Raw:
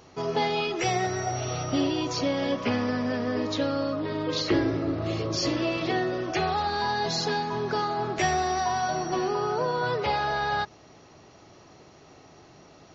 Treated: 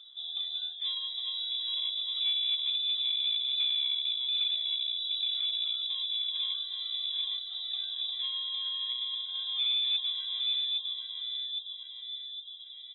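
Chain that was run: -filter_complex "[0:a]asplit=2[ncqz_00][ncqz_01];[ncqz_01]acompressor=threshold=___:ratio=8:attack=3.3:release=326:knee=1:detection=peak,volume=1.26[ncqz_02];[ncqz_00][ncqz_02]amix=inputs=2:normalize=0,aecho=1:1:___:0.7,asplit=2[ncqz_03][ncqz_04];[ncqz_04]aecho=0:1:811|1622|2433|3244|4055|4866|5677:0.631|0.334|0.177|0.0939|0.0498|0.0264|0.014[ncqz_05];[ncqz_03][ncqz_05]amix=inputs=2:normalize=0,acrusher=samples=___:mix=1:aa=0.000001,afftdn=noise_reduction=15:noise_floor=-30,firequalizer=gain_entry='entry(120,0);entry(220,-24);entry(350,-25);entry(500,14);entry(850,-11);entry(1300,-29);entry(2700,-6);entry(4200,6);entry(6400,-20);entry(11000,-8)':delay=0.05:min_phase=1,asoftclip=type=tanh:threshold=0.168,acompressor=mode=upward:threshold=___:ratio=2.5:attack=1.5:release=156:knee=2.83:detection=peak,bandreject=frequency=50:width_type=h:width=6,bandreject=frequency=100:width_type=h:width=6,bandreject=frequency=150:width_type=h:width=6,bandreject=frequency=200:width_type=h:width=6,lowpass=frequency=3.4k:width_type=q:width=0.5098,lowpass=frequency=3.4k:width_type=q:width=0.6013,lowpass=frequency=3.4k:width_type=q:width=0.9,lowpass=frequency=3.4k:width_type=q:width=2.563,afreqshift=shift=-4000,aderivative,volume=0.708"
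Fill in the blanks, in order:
0.0141, 6.7, 12, 0.0398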